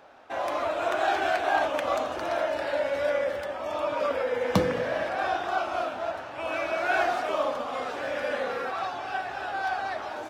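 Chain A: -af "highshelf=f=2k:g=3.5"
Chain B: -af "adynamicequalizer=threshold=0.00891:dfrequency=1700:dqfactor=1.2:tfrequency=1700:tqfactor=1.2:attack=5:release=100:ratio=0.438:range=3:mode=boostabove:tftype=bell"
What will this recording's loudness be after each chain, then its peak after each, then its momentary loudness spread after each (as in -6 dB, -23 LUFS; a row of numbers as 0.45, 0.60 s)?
-28.0, -26.5 LUFS; -7.0, -6.5 dBFS; 7, 7 LU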